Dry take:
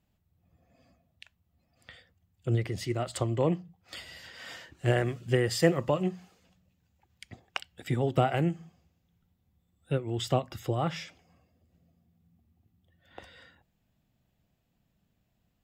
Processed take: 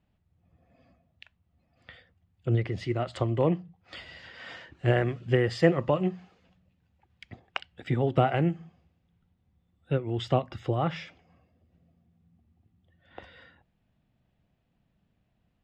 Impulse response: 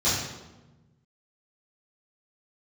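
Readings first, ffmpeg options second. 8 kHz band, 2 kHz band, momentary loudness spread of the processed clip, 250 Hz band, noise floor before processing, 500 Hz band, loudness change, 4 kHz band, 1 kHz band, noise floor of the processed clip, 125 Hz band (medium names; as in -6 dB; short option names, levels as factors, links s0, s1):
under -10 dB, +1.5 dB, 20 LU, +2.0 dB, -76 dBFS, +2.0 dB, +2.0 dB, -2.0 dB, +2.0 dB, -74 dBFS, +2.0 dB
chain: -af "lowpass=3300,volume=1.26"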